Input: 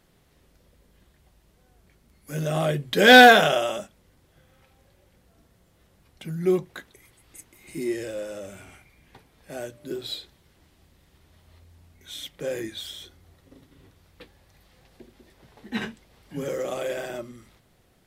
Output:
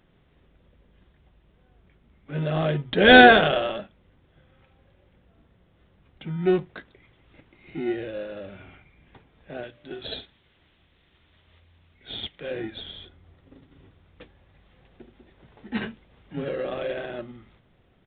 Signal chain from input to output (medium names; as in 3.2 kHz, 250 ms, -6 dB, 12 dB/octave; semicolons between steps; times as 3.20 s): 9.63–12.51 s: tilt shelf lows -7 dB, about 1.2 kHz; in parallel at -9.5 dB: sample-rate reducer 1.1 kHz, jitter 0%; on the sum: resampled via 8 kHz; trim -1 dB